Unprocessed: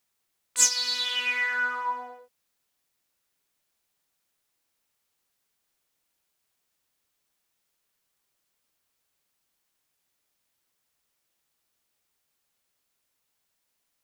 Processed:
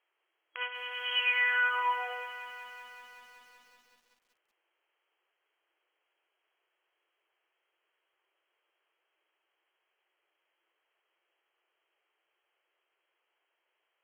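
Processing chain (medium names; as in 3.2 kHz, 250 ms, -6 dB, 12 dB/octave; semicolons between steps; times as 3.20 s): in parallel at +2.5 dB: compression 16:1, threshold -36 dBFS, peak gain reduction 22.5 dB; on the sum: FFT band-pass 320–3300 Hz; bit-crushed delay 188 ms, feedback 80%, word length 9-bit, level -13 dB; trim -3 dB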